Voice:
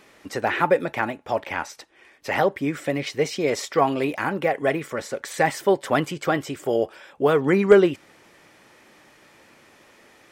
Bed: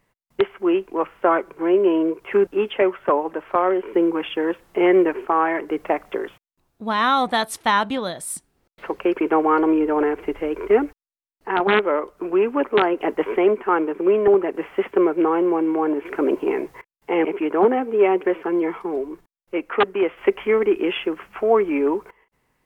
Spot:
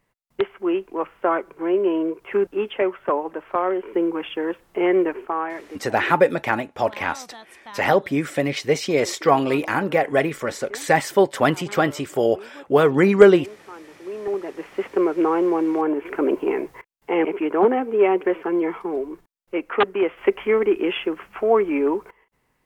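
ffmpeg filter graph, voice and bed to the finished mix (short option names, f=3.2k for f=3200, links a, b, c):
-filter_complex "[0:a]adelay=5500,volume=3dB[a];[1:a]volume=18dB,afade=t=out:st=5.08:d=0.81:silence=0.11885,afade=t=in:st=13.98:d=1.3:silence=0.0891251[b];[a][b]amix=inputs=2:normalize=0"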